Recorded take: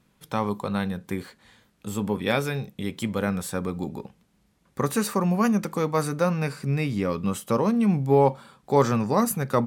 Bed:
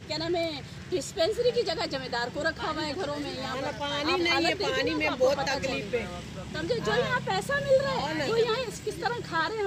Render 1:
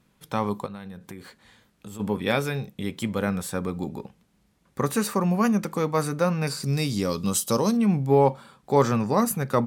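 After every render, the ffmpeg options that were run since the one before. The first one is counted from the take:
ffmpeg -i in.wav -filter_complex "[0:a]asplit=3[link_01][link_02][link_03];[link_01]afade=type=out:start_time=0.65:duration=0.02[link_04];[link_02]acompressor=threshold=-37dB:ratio=4:attack=3.2:release=140:knee=1:detection=peak,afade=type=in:start_time=0.65:duration=0.02,afade=type=out:start_time=1.99:duration=0.02[link_05];[link_03]afade=type=in:start_time=1.99:duration=0.02[link_06];[link_04][link_05][link_06]amix=inputs=3:normalize=0,asettb=1/sr,asplit=3[link_07][link_08][link_09];[link_07]atrim=end=6.474[link_10];[link_08]atrim=start=6.47:end=7.77,asetpts=PTS-STARTPTS,afade=type=in:duration=0.004:curve=qsin,afade=type=out:start_time=1.296:duration=0.004:curve=qsin,highshelf=frequency=3300:width_type=q:width=1.5:gain=11[link_11];[link_09]atrim=start=7.766[link_12];[link_10][link_11]acrossfade=duration=0.004:curve1=hsin:curve2=qsin[link_13];[link_13][link_12]acrossfade=duration=0.004:curve1=qsin:curve2=hsin" out.wav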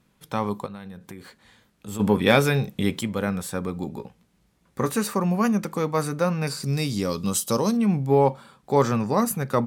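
ffmpeg -i in.wav -filter_complex "[0:a]asettb=1/sr,asplit=3[link_01][link_02][link_03];[link_01]atrim=end=1.884[link_04];[link_02]atrim=start=1.88:end=3.01,asetpts=PTS-STARTPTS,afade=type=in:duration=0.004:curve=qsin,afade=type=out:start_time=1.126:duration=0.004:curve=qsin,acontrast=80[link_05];[link_03]atrim=start=3.006[link_06];[link_04][link_05]acrossfade=duration=0.004:curve1=hsin:curve2=qsin[link_07];[link_07][link_06]acrossfade=duration=0.004:curve1=qsin:curve2=hsin,asettb=1/sr,asplit=3[link_08][link_09][link_10];[link_08]atrim=end=3.954[link_11];[link_09]atrim=start=3.95:end=4.92,asetpts=PTS-STARTPTS,afade=type=in:duration=0.004:curve=qsin,afade=type=out:start_time=0.966:duration=0.004:curve=qsin,asplit=2[link_12][link_13];[link_13]adelay=17,volume=-8dB[link_14];[link_12][link_14]amix=inputs=2:normalize=0,atrim=end_sample=42777[link_15];[link_10]atrim=start=4.916[link_16];[link_11][link_15]acrossfade=duration=0.004:curve1=hsin:curve2=qsin[link_17];[link_17][link_16]acrossfade=duration=0.004:curve1=qsin:curve2=hsin" out.wav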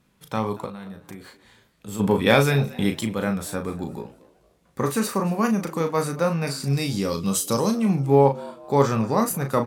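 ffmpeg -i in.wav -filter_complex "[0:a]asplit=2[link_01][link_02];[link_02]adelay=36,volume=-6.5dB[link_03];[link_01][link_03]amix=inputs=2:normalize=0,asplit=4[link_04][link_05][link_06][link_07];[link_05]adelay=229,afreqshift=100,volume=-21dB[link_08];[link_06]adelay=458,afreqshift=200,volume=-29.2dB[link_09];[link_07]adelay=687,afreqshift=300,volume=-37.4dB[link_10];[link_04][link_08][link_09][link_10]amix=inputs=4:normalize=0" out.wav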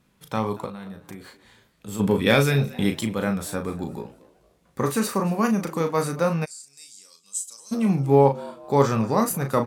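ffmpeg -i in.wav -filter_complex "[0:a]asettb=1/sr,asplit=3[link_01][link_02][link_03];[link_01]atrim=end=2.044[link_04];[link_02]atrim=start=2.04:end=2.74,asetpts=PTS-STARTPTS,afade=type=in:duration=0.004:curve=qsin,afade=type=out:start_time=0.696:duration=0.004:curve=qsin,equalizer=frequency=850:width=1.5:gain=-5.5[link_05];[link_03]atrim=start=2.736[link_06];[link_04][link_05]acrossfade=duration=0.004:curve1=hsin:curve2=qsin[link_07];[link_07][link_06]acrossfade=duration=0.004:curve1=qsin:curve2=hsin,asplit=3[link_08][link_09][link_10];[link_08]afade=type=out:start_time=6.44:duration=0.02[link_11];[link_09]bandpass=frequency=7700:width_type=q:width=4.4,afade=type=in:start_time=6.44:duration=0.02,afade=type=out:start_time=7.71:duration=0.02[link_12];[link_10]afade=type=in:start_time=7.71:duration=0.02[link_13];[link_11][link_12][link_13]amix=inputs=3:normalize=0" out.wav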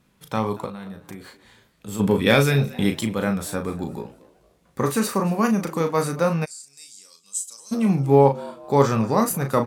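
ffmpeg -i in.wav -af "volume=1.5dB" out.wav

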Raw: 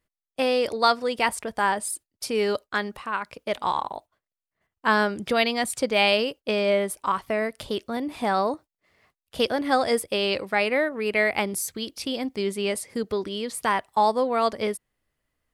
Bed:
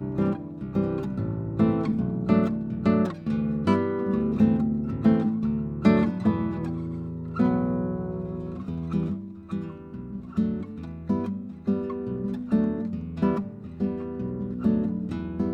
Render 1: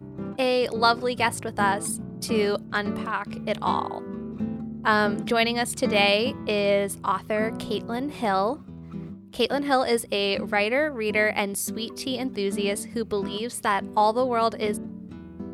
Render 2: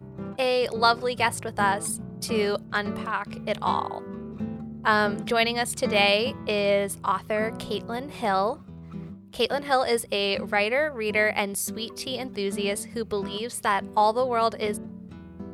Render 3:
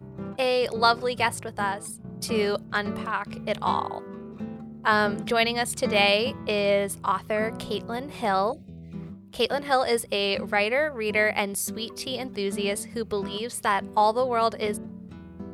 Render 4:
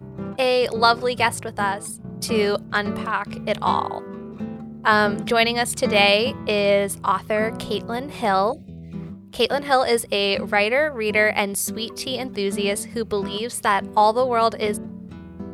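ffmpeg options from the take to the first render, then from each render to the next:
ffmpeg -i in.wav -i bed.wav -filter_complex "[1:a]volume=-9.5dB[link_01];[0:a][link_01]amix=inputs=2:normalize=0" out.wav
ffmpeg -i in.wav -af "equalizer=frequency=280:width=3.6:gain=-11" out.wav
ffmpeg -i in.wav -filter_complex "[0:a]asettb=1/sr,asplit=3[link_01][link_02][link_03];[link_01]atrim=end=4.004[link_04];[link_02]atrim=start=4:end=4.92,asetpts=PTS-STARTPTS,afade=type=in:duration=0.004:curve=qsin,afade=type=out:start_time=0.916:duration=0.004:curve=qsin,lowshelf=frequency=150:gain=-9.5[link_05];[link_03]atrim=start=4.916[link_06];[link_04][link_05]acrossfade=duration=0.004:curve1=hsin:curve2=qsin[link_07];[link_07][link_06]acrossfade=duration=0.004:curve1=qsin:curve2=hsin,asettb=1/sr,asplit=3[link_08][link_09][link_10];[link_08]atrim=end=8.524[link_11];[link_09]atrim=start=8.52:end=8.93,asetpts=PTS-STARTPTS,afade=type=in:duration=0.004:curve=qsin,afade=type=out:start_time=0.406:duration=0.004:curve=qsin,asuperstop=centerf=1200:order=12:qfactor=0.94[link_12];[link_10]atrim=start=8.926[link_13];[link_11][link_12]acrossfade=duration=0.004:curve1=hsin:curve2=qsin[link_14];[link_14][link_13]acrossfade=duration=0.004:curve1=qsin:curve2=hsin,asplit=2[link_15][link_16];[link_15]atrim=end=2.04,asetpts=PTS-STARTPTS,afade=type=out:start_time=1.16:duration=0.88:silence=0.298538[link_17];[link_16]atrim=start=2.04,asetpts=PTS-STARTPTS,afade=type=in:duration=0.004:curve=hsin:silence=0.298538[link_18];[link_17][link_18]concat=n=2:v=0:a=1" out.wav
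ffmpeg -i in.wav -af "volume=4.5dB,alimiter=limit=-2dB:level=0:latency=1" out.wav

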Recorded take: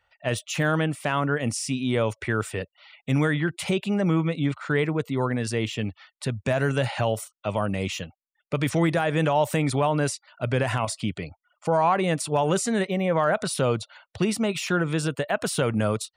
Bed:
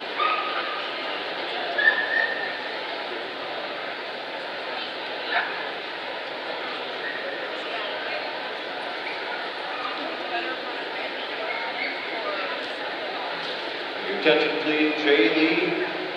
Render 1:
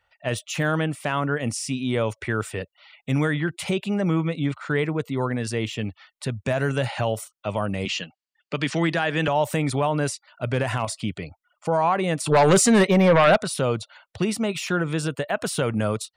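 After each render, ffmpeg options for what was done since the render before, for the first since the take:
ffmpeg -i in.wav -filter_complex "[0:a]asettb=1/sr,asplit=3[link_01][link_02][link_03];[link_01]atrim=end=7.854[link_04];[link_02]atrim=start=7.85:end=9.28,asetpts=PTS-STARTPTS,afade=type=in:duration=0.004:curve=qsin,afade=type=out:start_time=1.426:duration=0.004:curve=qsin,highpass=frequency=150:width=0.5412,highpass=frequency=150:width=1.3066,equalizer=frequency=530:width_type=q:width=4:gain=-4,equalizer=frequency=1700:width_type=q:width=4:gain=5,equalizer=frequency=2900:width_type=q:width=4:gain=7,equalizer=frequency=4600:width_type=q:width=4:gain=8,lowpass=frequency=8100:width=0.5412,lowpass=frequency=8100:width=1.3066[link_05];[link_03]atrim=start=9.276[link_06];[link_04][link_05]acrossfade=duration=0.004:curve1=hsin:curve2=qsin[link_07];[link_07][link_06]acrossfade=duration=0.004:curve1=qsin:curve2=hsin,asettb=1/sr,asplit=3[link_08][link_09][link_10];[link_08]atrim=end=10.474[link_11];[link_09]atrim=start=10.47:end=10.95,asetpts=PTS-STARTPTS,afade=type=in:duration=0.004:curve=qsin,afade=type=out:start_time=0.476:duration=0.004:curve=qsin,aeval=exprs='clip(val(0),-1,0.126)':channel_layout=same[link_12];[link_10]atrim=start=10.946[link_13];[link_11][link_12]acrossfade=duration=0.004:curve1=hsin:curve2=qsin[link_14];[link_14][link_13]acrossfade=duration=0.004:curve1=qsin:curve2=hsin,asettb=1/sr,asplit=3[link_15][link_16][link_17];[link_15]atrim=end=12.264[link_18];[link_16]atrim=start=12.26:end=13.37,asetpts=PTS-STARTPTS,afade=type=in:duration=0.004:curve=qsin,afade=type=out:start_time=1.106:duration=0.004:curve=qsin,aeval=exprs='0.282*sin(PI/2*2*val(0)/0.282)':channel_layout=same[link_19];[link_17]atrim=start=13.366[link_20];[link_18][link_19]acrossfade=duration=0.004:curve1=hsin:curve2=qsin[link_21];[link_21][link_20]acrossfade=duration=0.004:curve1=qsin:curve2=hsin" out.wav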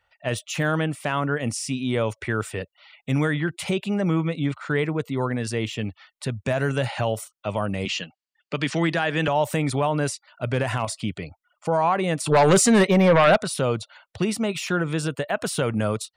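ffmpeg -i in.wav -af anull out.wav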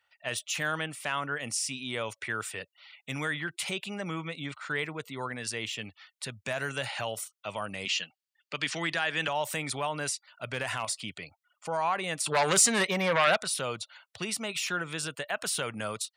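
ffmpeg -i in.wav -af "highpass=160,equalizer=frequency=270:width=0.32:gain=-14" out.wav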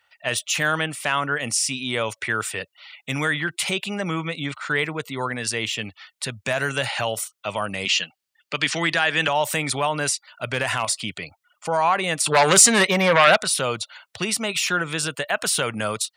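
ffmpeg -i in.wav -af "volume=9dB" out.wav

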